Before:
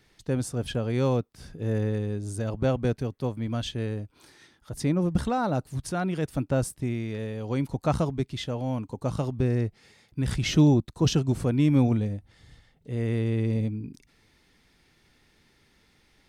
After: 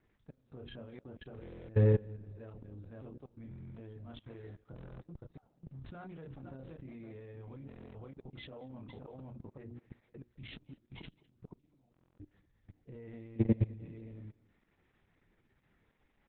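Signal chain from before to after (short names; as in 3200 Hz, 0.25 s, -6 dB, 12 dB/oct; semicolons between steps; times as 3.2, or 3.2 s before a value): Wiener smoothing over 9 samples; 5.54–7.8 compressor 12:1, threshold -28 dBFS, peak gain reduction 9.5 dB; running mean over 6 samples; notches 60/120/180/240/300/360/420/480/540 Hz; doubler 30 ms -5 dB; flipped gate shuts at -18 dBFS, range -36 dB; echo 0.515 s -13 dB; phaser 0.52 Hz, delay 4 ms, feedback 23%; level quantiser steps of 24 dB; outdoor echo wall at 36 m, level -22 dB; stuck buffer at 1.41/3.49/4.74/7.67/11.92, samples 1024, times 11; gain +1.5 dB; Opus 8 kbps 48000 Hz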